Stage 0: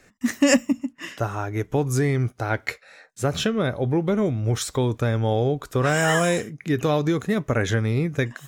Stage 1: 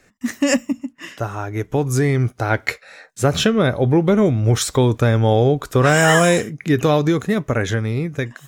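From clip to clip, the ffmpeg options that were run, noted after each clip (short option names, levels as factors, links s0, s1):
-af "dynaudnorm=f=340:g=9:m=2.82"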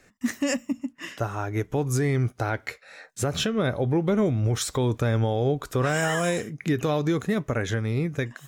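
-af "alimiter=limit=0.224:level=0:latency=1:release=363,volume=0.75"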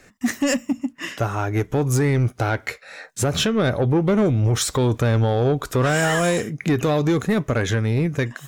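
-af "asoftclip=type=tanh:threshold=0.106,volume=2.24"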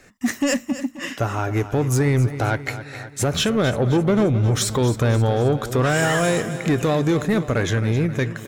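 -af "aecho=1:1:265|530|795|1060|1325|1590:0.224|0.125|0.0702|0.0393|0.022|0.0123"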